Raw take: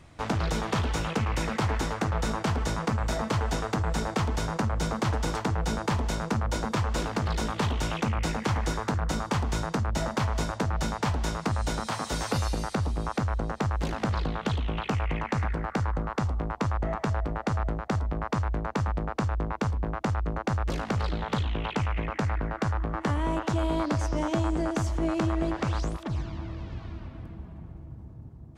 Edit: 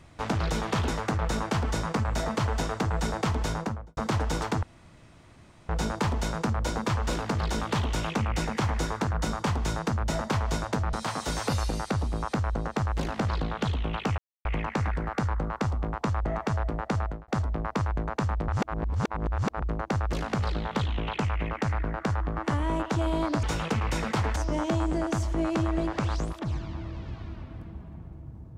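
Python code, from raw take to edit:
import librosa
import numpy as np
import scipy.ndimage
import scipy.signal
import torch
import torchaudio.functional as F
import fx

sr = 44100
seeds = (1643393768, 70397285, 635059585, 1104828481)

y = fx.studio_fade_out(x, sr, start_s=4.44, length_s=0.46)
y = fx.edit(y, sr, fx.move(start_s=0.88, length_s=0.93, to_s=24.0),
    fx.insert_room_tone(at_s=5.56, length_s=1.06),
    fx.cut(start_s=10.8, length_s=0.97),
    fx.insert_silence(at_s=15.02, length_s=0.27),
    fx.fade_out_span(start_s=17.57, length_s=0.28),
    fx.reverse_span(start_s=19.05, length_s=1.14), tone=tone)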